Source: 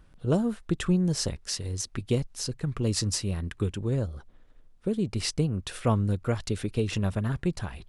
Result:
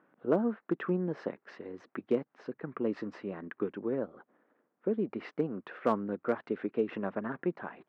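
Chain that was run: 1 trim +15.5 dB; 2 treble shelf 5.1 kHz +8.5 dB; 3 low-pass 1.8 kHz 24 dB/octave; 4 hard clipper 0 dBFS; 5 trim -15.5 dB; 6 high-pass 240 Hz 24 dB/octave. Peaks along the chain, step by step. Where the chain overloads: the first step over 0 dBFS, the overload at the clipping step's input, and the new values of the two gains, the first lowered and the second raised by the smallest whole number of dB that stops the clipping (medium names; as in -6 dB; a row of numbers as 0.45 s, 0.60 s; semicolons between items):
+4.0 dBFS, +5.0 dBFS, +4.0 dBFS, 0.0 dBFS, -15.5 dBFS, -14.0 dBFS; step 1, 4.0 dB; step 1 +11.5 dB, step 5 -11.5 dB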